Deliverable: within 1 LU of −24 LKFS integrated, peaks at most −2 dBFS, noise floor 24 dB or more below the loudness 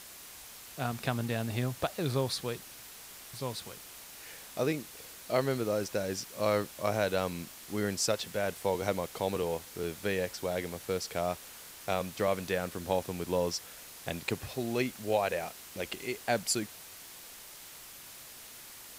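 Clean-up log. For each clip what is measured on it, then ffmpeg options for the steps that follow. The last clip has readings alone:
background noise floor −49 dBFS; target noise floor −58 dBFS; integrated loudness −33.5 LKFS; sample peak −14.5 dBFS; target loudness −24.0 LKFS
→ -af "afftdn=noise_reduction=9:noise_floor=-49"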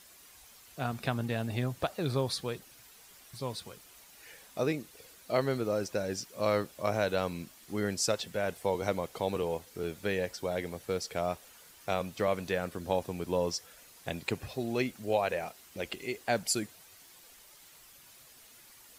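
background noise floor −56 dBFS; target noise floor −58 dBFS
→ -af "afftdn=noise_reduction=6:noise_floor=-56"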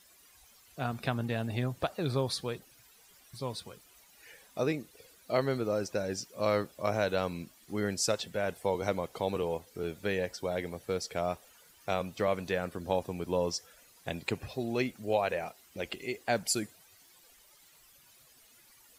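background noise floor −61 dBFS; integrated loudness −33.5 LKFS; sample peak −14.5 dBFS; target loudness −24.0 LKFS
→ -af "volume=9.5dB"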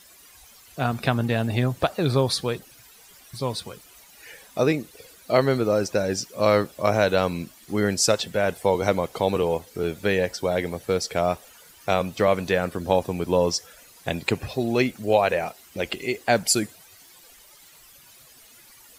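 integrated loudness −24.0 LKFS; sample peak −5.0 dBFS; background noise floor −51 dBFS

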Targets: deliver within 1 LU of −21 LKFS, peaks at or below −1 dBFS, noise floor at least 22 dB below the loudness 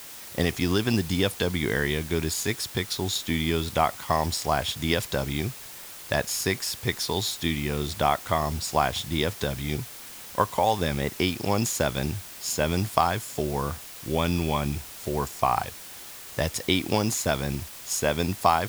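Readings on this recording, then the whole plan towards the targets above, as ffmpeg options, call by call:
background noise floor −42 dBFS; target noise floor −49 dBFS; integrated loudness −27.0 LKFS; sample peak −4.5 dBFS; target loudness −21.0 LKFS
→ -af "afftdn=noise_reduction=7:noise_floor=-42"
-af "volume=6dB,alimiter=limit=-1dB:level=0:latency=1"

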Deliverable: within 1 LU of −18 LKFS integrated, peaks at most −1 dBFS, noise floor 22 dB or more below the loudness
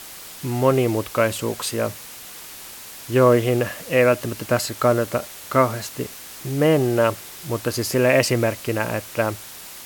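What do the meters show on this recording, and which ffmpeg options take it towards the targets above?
background noise floor −39 dBFS; target noise floor −43 dBFS; integrated loudness −21.0 LKFS; sample peak −2.5 dBFS; target loudness −18.0 LKFS
→ -af "afftdn=noise_reduction=6:noise_floor=-39"
-af "volume=3dB,alimiter=limit=-1dB:level=0:latency=1"

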